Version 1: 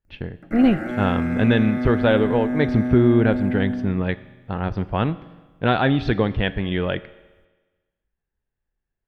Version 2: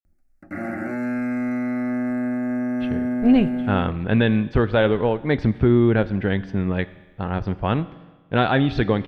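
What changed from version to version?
speech: entry +2.70 s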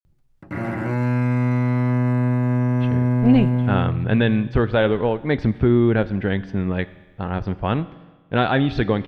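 background: remove phaser with its sweep stopped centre 660 Hz, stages 8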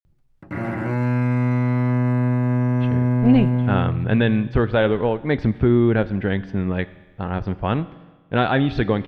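master: add bass and treble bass 0 dB, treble −3 dB

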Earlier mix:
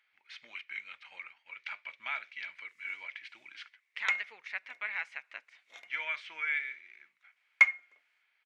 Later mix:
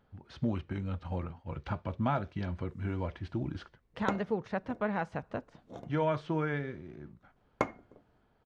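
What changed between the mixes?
background −5.0 dB
master: remove high-pass with resonance 2,200 Hz, resonance Q 7

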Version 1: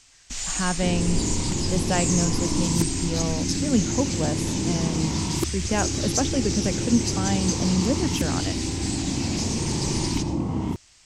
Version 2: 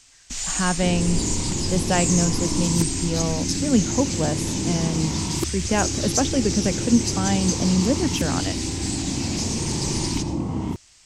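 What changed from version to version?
speech +3.0 dB
first sound: add high-shelf EQ 6,400 Hz +4.5 dB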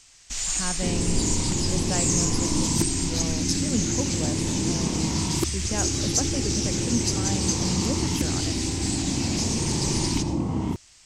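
speech −9.5 dB

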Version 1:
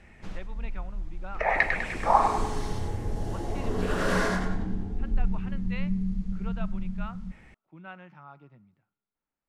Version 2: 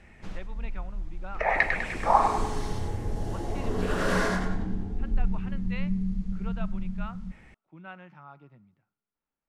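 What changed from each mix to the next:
nothing changed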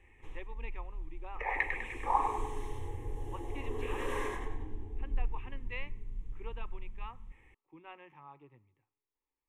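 background −6.5 dB
master: add phaser with its sweep stopped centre 960 Hz, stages 8

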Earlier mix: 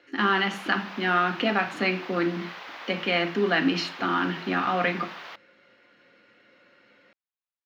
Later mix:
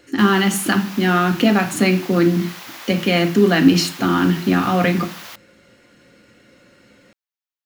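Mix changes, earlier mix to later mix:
speech: remove high-pass filter 1,000 Hz 6 dB per octave
master: remove high-frequency loss of the air 270 metres

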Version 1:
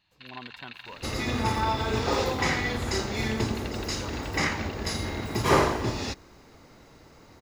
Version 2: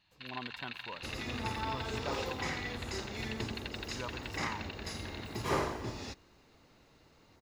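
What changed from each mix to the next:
second sound −11.0 dB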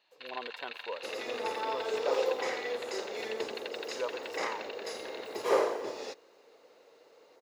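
master: add high-pass with resonance 480 Hz, resonance Q 4.6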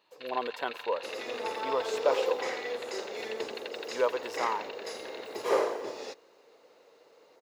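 speech +8.5 dB

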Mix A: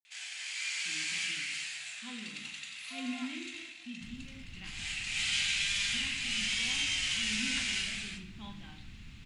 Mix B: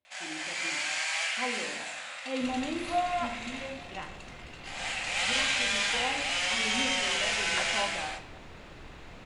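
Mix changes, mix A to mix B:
speech: entry −0.65 s
second sound: entry −1.60 s
master: remove drawn EQ curve 210 Hz 0 dB, 570 Hz −27 dB, 2,600 Hz −2 dB

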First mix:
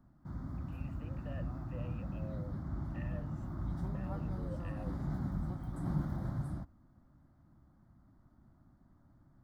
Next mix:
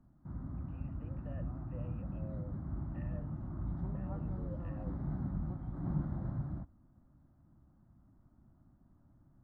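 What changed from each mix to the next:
master: add head-to-tape spacing loss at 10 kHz 40 dB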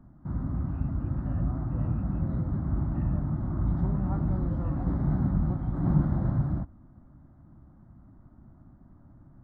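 background +11.5 dB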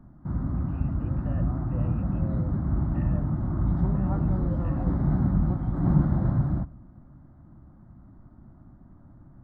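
speech +8.0 dB
reverb: on, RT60 0.85 s

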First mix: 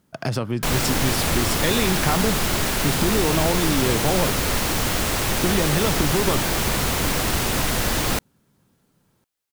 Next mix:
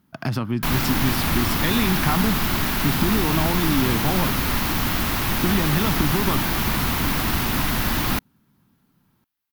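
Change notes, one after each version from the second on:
master: add graphic EQ with 10 bands 250 Hz +5 dB, 500 Hz −10 dB, 1,000 Hz +3 dB, 8,000 Hz −11 dB, 16,000 Hz +5 dB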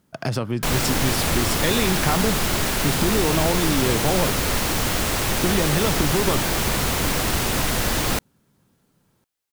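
master: add graphic EQ with 10 bands 250 Hz −5 dB, 500 Hz +10 dB, 1,000 Hz −3 dB, 8,000 Hz +11 dB, 16,000 Hz −5 dB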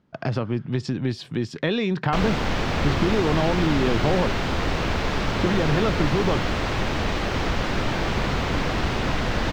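background: entry +1.50 s
master: add high-frequency loss of the air 200 metres

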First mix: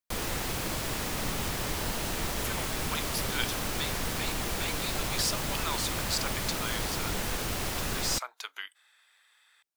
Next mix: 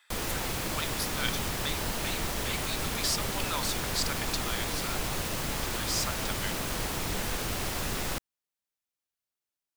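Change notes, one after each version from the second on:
speech: entry −2.15 s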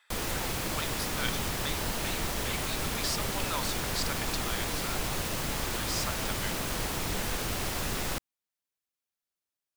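speech: add spectral tilt −1.5 dB per octave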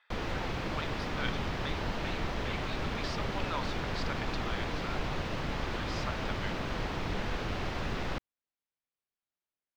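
master: add high-frequency loss of the air 230 metres

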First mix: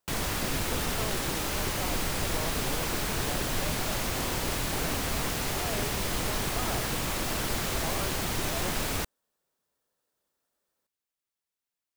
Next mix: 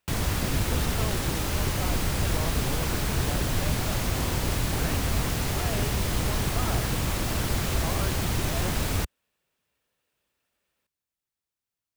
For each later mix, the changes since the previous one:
speech: add parametric band 2,500 Hz +14.5 dB 0.9 octaves
master: add parametric band 73 Hz +10 dB 2.7 octaves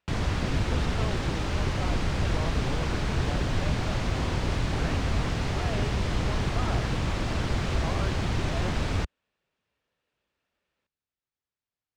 master: add high-frequency loss of the air 120 metres

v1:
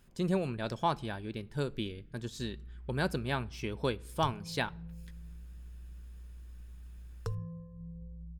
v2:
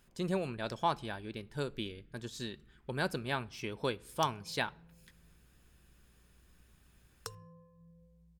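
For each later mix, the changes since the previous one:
background: add spectral tilt +3.5 dB per octave
master: add low-shelf EQ 320 Hz −6 dB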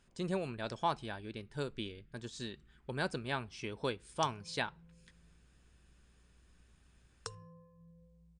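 speech: send −11.5 dB
master: add linear-phase brick-wall low-pass 10,000 Hz

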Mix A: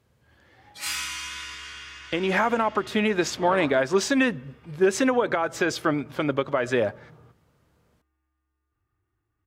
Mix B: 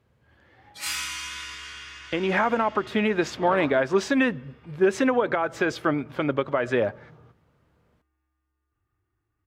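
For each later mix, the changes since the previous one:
speech: add bass and treble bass 0 dB, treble −9 dB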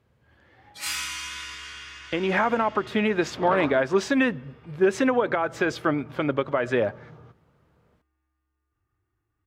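second sound +4.0 dB

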